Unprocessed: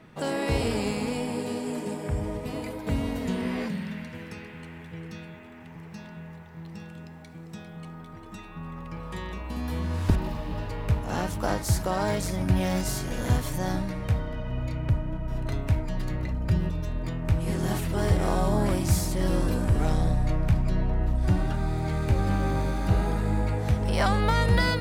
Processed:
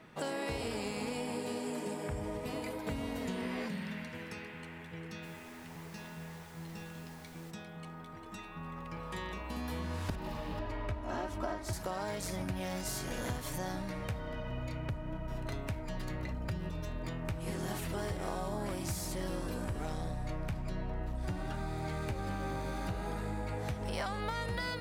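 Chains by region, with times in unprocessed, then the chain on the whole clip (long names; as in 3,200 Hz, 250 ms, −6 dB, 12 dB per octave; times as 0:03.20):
0:05.22–0:07.50: background noise pink −54 dBFS + double-tracking delay 12 ms −11 dB
0:10.59–0:11.73: low-pass filter 2,100 Hz 6 dB per octave + comb filter 3.1 ms, depth 91%
whole clip: low-shelf EQ 260 Hz −7.5 dB; downward compressor, threshold −32 dBFS; level −1.5 dB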